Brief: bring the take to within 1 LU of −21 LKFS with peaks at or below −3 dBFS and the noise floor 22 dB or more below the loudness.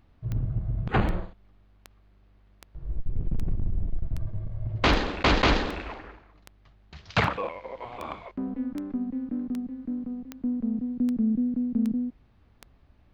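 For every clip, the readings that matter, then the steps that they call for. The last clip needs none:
number of clicks 17; integrated loudness −29.0 LKFS; sample peak −11.5 dBFS; target loudness −21.0 LKFS
→ click removal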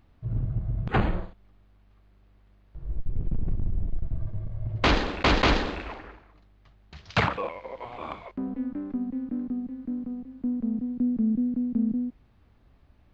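number of clicks 0; integrated loudness −29.0 LKFS; sample peak −11.5 dBFS; target loudness −21.0 LKFS
→ level +8 dB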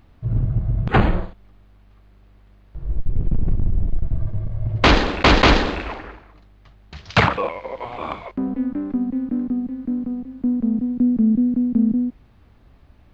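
integrated loudness −21.0 LKFS; sample peak −3.5 dBFS; background noise floor −51 dBFS

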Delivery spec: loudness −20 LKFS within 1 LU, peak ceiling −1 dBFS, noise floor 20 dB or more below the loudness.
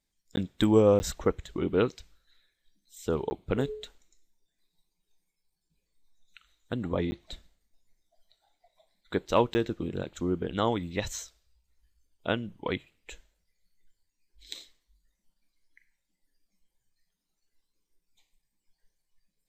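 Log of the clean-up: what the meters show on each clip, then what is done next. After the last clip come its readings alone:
number of dropouts 5; longest dropout 10 ms; integrated loudness −29.5 LKFS; sample peak −9.0 dBFS; target loudness −20.0 LKFS
→ repair the gap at 0:00.36/0:00.99/0:03.30/0:07.11/0:09.54, 10 ms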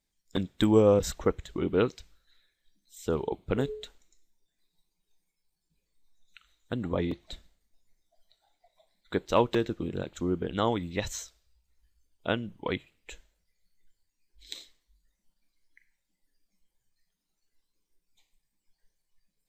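number of dropouts 0; integrated loudness −29.5 LKFS; sample peak −9.0 dBFS; target loudness −20.0 LKFS
→ level +9.5 dB
brickwall limiter −1 dBFS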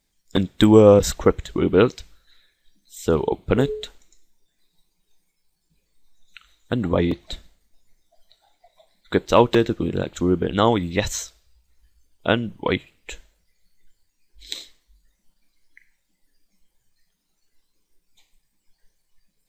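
integrated loudness −20.0 LKFS; sample peak −1.0 dBFS; background noise floor −73 dBFS

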